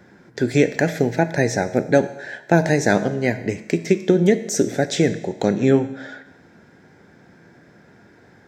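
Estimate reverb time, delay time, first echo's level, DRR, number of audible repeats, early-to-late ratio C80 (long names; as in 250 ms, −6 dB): 1.0 s, no echo audible, no echo audible, 10.0 dB, no echo audible, 15.0 dB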